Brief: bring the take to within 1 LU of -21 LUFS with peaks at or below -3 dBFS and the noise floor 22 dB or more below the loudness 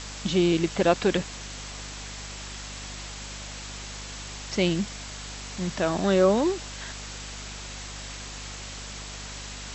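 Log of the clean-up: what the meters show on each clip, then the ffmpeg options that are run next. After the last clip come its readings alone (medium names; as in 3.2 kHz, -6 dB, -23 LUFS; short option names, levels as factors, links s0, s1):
hum 50 Hz; highest harmonic 250 Hz; hum level -40 dBFS; noise floor -39 dBFS; noise floor target -51 dBFS; loudness -29.0 LUFS; peak level -6.0 dBFS; loudness target -21.0 LUFS
-> -af "bandreject=f=50:t=h:w=4,bandreject=f=100:t=h:w=4,bandreject=f=150:t=h:w=4,bandreject=f=200:t=h:w=4,bandreject=f=250:t=h:w=4"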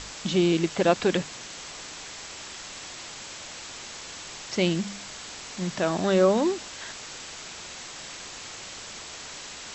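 hum not found; noise floor -41 dBFS; noise floor target -51 dBFS
-> -af "afftdn=nr=10:nf=-41"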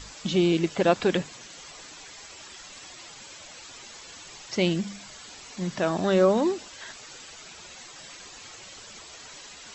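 noise floor -46 dBFS; noise floor target -47 dBFS
-> -af "afftdn=nr=6:nf=-46"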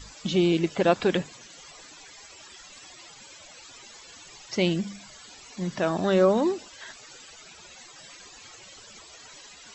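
noise floor -49 dBFS; loudness -25.0 LUFS; peak level -6.0 dBFS; loudness target -21.0 LUFS
-> -af "volume=1.58,alimiter=limit=0.708:level=0:latency=1"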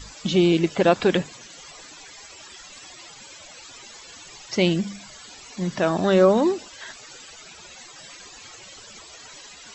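loudness -21.0 LUFS; peak level -3.0 dBFS; noise floor -45 dBFS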